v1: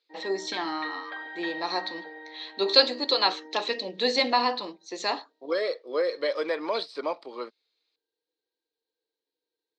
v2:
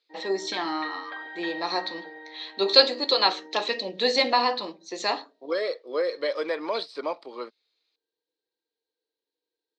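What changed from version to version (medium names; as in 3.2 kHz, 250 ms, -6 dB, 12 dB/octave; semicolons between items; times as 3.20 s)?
first voice: send +11.0 dB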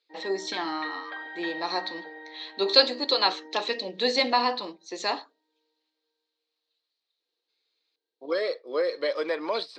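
first voice: send -9.5 dB; second voice: entry +2.80 s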